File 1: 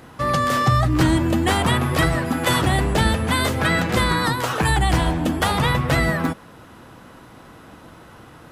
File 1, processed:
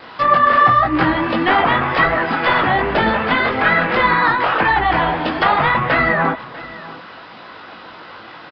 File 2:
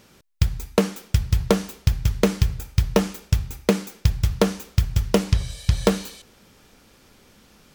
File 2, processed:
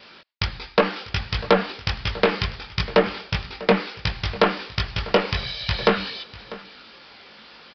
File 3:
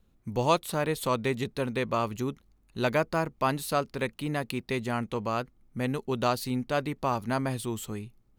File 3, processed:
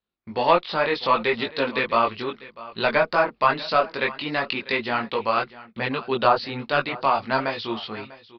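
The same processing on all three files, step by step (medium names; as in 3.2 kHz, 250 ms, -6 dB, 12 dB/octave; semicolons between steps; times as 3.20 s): high-pass 1 kHz 6 dB/octave; gate with hold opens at -51 dBFS; in parallel at -10 dB: one-sided clip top -29.5 dBFS; on the sum: dynamic bell 4 kHz, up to -6 dB, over -39 dBFS, Q 1.3; sine folder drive 5 dB, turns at -6.5 dBFS; chorus voices 6, 1.3 Hz, delay 20 ms, depth 3 ms; low-pass that closes with the level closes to 2.3 kHz, closed at -16 dBFS; on a send: delay 646 ms -18.5 dB; on the sum: resampled via 11.025 kHz; trim +4.5 dB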